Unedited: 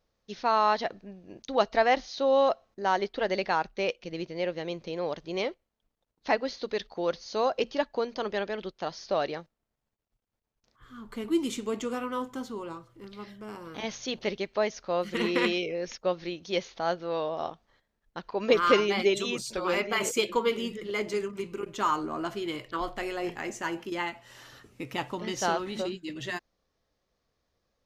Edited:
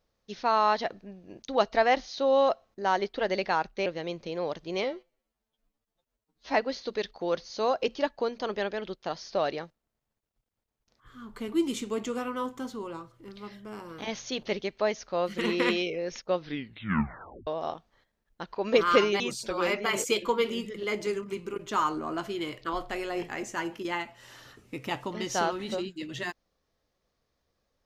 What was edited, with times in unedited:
3.86–4.47 cut
5.45–6.3 stretch 2×
16.12 tape stop 1.11 s
18.96–19.27 cut

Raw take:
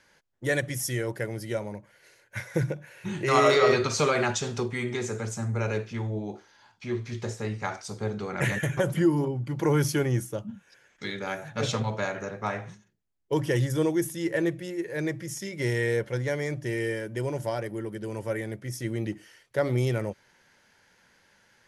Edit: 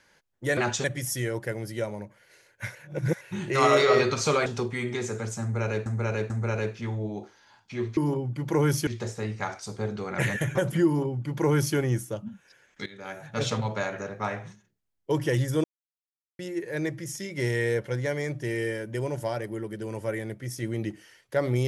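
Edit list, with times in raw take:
2.48–2.94 reverse
4.19–4.46 move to 0.57
5.42–5.86 loop, 3 plays
9.08–9.98 copy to 7.09
11.08–11.63 fade in, from -16 dB
13.86–14.61 mute

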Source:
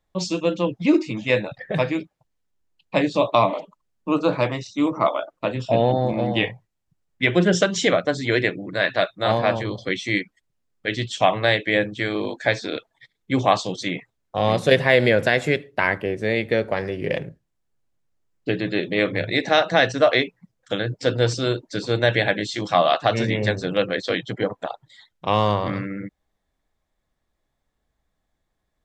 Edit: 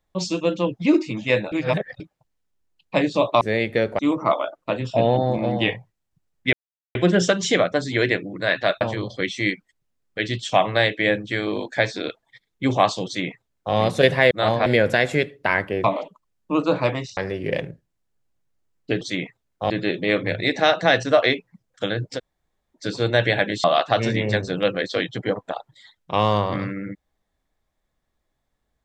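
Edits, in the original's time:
1.52–2 reverse
3.41–4.74 swap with 16.17–16.75
7.28 insert silence 0.42 s
9.14–9.49 move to 14.99
13.74–14.43 copy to 18.59
21.06–21.65 room tone, crossfade 0.06 s
22.53–22.78 cut

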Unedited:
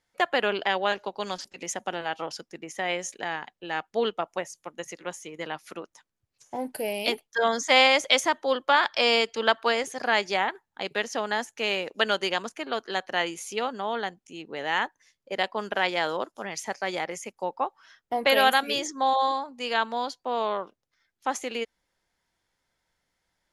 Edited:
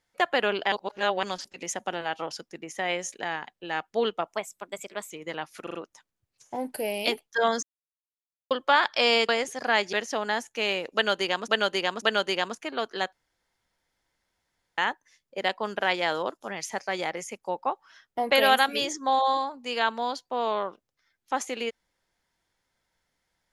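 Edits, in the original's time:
0.72–1.23 reverse
4.34–5.23 speed 116%
5.75 stutter 0.04 s, 4 plays
7.63–8.51 mute
9.29–9.68 cut
10.32–10.95 cut
11.96–12.5 loop, 3 plays
13.07–14.72 room tone

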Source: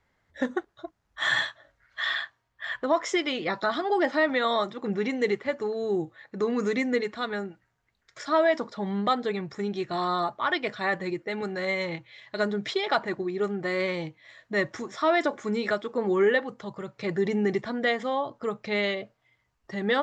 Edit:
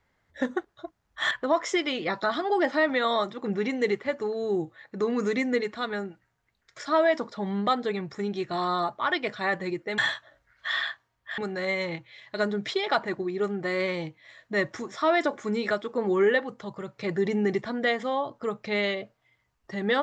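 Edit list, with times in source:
1.31–2.71 move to 11.38

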